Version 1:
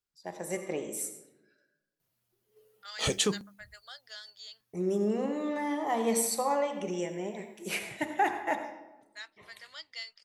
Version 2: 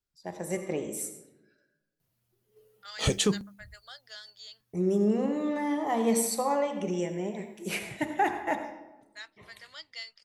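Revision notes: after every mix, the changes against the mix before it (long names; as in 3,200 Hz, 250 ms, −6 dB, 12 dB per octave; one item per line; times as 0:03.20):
master: add low-shelf EQ 230 Hz +9.5 dB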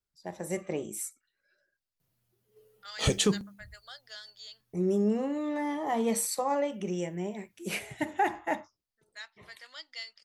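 reverb: off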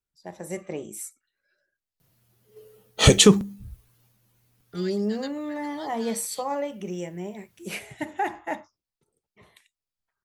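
second voice: entry +1.90 s
background +11.5 dB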